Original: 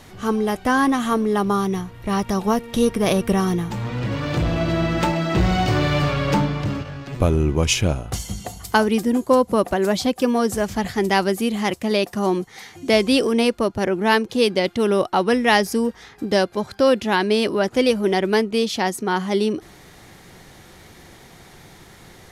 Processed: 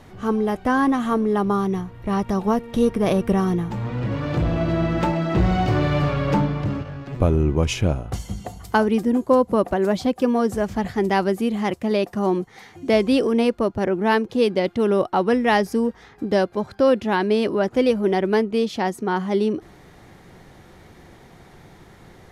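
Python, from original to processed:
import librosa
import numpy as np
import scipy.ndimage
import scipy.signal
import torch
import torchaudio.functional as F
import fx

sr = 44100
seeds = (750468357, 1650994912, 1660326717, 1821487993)

y = fx.high_shelf(x, sr, hz=2400.0, db=-11.0)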